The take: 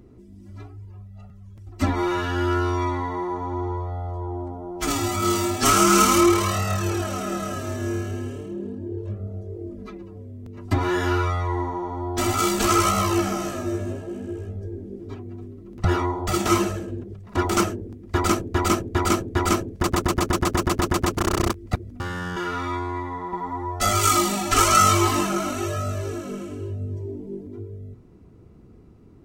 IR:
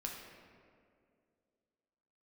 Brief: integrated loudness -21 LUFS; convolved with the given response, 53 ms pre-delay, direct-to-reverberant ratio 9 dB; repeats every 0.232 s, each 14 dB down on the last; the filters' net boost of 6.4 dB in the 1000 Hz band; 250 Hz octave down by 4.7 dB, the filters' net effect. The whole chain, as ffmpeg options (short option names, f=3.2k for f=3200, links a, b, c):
-filter_complex "[0:a]equalizer=f=250:t=o:g=-9,equalizer=f=1k:t=o:g=9,aecho=1:1:232|464:0.2|0.0399,asplit=2[a][b];[1:a]atrim=start_sample=2205,adelay=53[c];[b][c]afir=irnorm=-1:irlink=0,volume=-8.5dB[d];[a][d]amix=inputs=2:normalize=0,volume=-1.5dB"